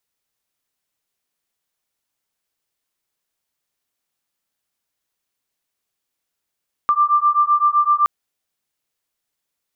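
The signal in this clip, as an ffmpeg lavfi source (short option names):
-f lavfi -i "aevalsrc='0.158*(sin(2*PI*1180*t)+sin(2*PI*1187.8*t))':d=1.17:s=44100"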